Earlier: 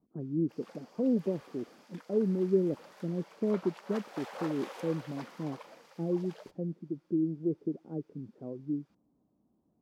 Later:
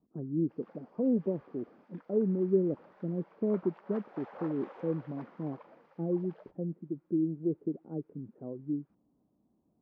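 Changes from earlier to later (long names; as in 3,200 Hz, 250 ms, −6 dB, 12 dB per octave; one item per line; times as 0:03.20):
background −3.5 dB
master: add low-pass filter 1,600 Hz 12 dB per octave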